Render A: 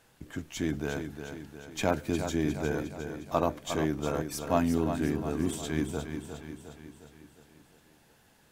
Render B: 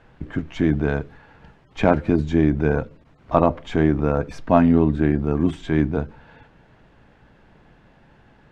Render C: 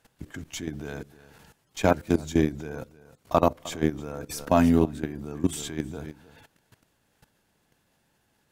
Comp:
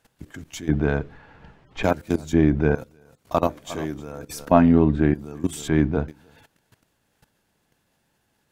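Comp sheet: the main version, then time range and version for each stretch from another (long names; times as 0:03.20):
C
0:00.69–0:01.83: punch in from B
0:02.33–0:02.75: punch in from B
0:03.47–0:03.94: punch in from A
0:04.51–0:05.14: punch in from B
0:05.68–0:06.08: punch in from B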